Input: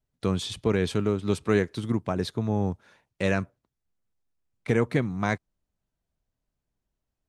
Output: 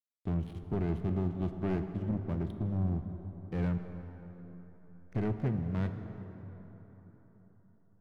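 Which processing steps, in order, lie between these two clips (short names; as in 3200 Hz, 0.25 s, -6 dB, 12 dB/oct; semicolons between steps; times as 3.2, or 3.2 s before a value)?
LPF 1800 Hz 12 dB/oct; bell 1000 Hz -14.5 dB 2.3 oct; backlash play -39.5 dBFS; varispeed -9%; soft clip -25.5 dBFS, distortion -11 dB; plate-style reverb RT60 4.3 s, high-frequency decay 0.5×, DRR 7 dB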